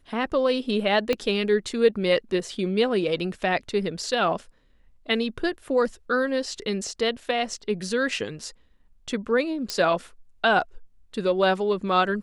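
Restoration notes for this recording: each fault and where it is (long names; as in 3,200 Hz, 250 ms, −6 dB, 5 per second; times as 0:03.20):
0:01.13: click −11 dBFS
0:09.70: click −13 dBFS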